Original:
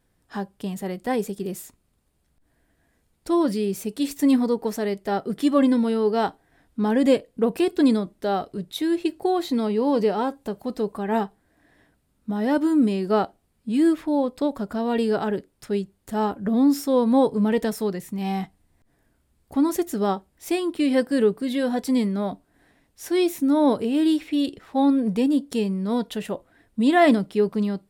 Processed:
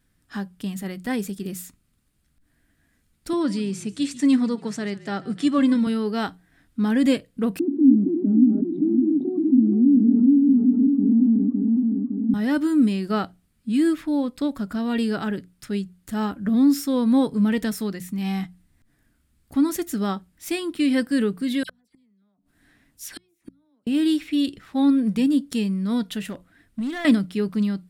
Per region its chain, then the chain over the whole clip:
3.33–5.87 s: elliptic band-pass 130–8400 Hz, stop band 50 dB + frequency-shifting echo 141 ms, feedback 37%, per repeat -42 Hz, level -19 dB
7.59–12.34 s: backward echo that repeats 280 ms, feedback 47%, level -1 dB + Butterworth band-pass 260 Hz, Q 5.1 + level flattener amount 70%
21.63–23.87 s: phase dispersion lows, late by 64 ms, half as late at 2.6 kHz + compression 3:1, threshold -26 dBFS + inverted gate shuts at -24 dBFS, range -37 dB
26.26–27.05 s: compression 4:1, threshold -25 dBFS + hard clipper -24.5 dBFS
whole clip: high-order bell 610 Hz -9 dB; hum notches 60/120/180 Hz; trim +2 dB

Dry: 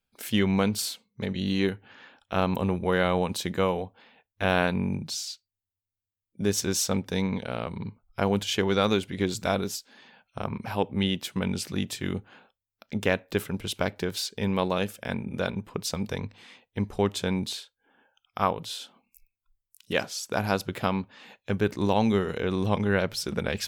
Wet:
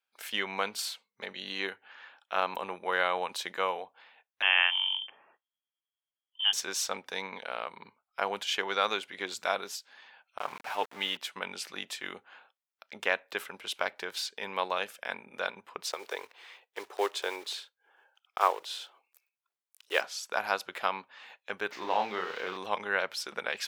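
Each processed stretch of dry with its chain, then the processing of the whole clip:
4.42–6.53 s: bass shelf 120 Hz -5.5 dB + frequency inversion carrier 3.3 kHz
10.38–11.17 s: comb 6.8 ms, depth 39% + small samples zeroed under -37.5 dBFS
15.83–20.01 s: block-companded coder 5-bit + resonant low shelf 270 Hz -10.5 dB, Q 3
21.71–22.57 s: zero-crossing glitches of -21 dBFS + distance through air 230 m + doubling 33 ms -5 dB
whole clip: high-pass 890 Hz 12 dB/octave; treble shelf 4.1 kHz -10.5 dB; trim +2.5 dB

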